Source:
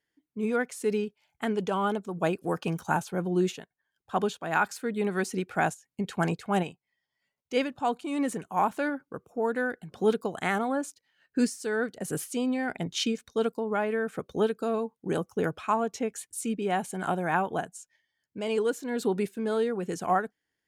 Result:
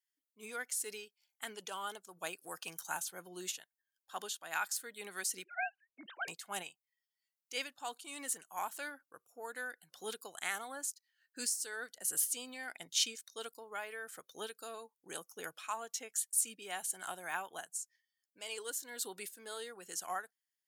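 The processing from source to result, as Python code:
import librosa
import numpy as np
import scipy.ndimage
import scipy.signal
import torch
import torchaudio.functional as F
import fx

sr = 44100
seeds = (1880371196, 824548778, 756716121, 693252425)

y = fx.sine_speech(x, sr, at=(5.44, 6.28))
y = fx.noise_reduce_blind(y, sr, reduce_db=7)
y = np.diff(y, prepend=0.0)
y = y * 10.0 ** (4.0 / 20.0)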